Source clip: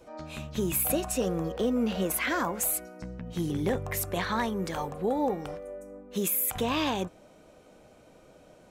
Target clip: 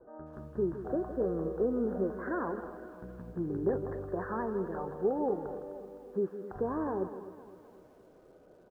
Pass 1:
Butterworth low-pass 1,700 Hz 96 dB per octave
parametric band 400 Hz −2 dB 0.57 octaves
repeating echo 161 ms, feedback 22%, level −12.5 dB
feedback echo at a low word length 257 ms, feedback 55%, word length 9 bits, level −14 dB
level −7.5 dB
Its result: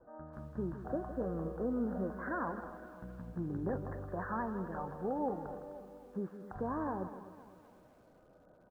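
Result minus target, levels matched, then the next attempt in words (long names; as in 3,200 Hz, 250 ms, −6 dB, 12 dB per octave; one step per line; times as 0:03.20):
500 Hz band −2.5 dB
Butterworth low-pass 1,700 Hz 96 dB per octave
parametric band 400 Hz +10 dB 0.57 octaves
repeating echo 161 ms, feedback 22%, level −12.5 dB
feedback echo at a low word length 257 ms, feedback 55%, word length 9 bits, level −14 dB
level −7.5 dB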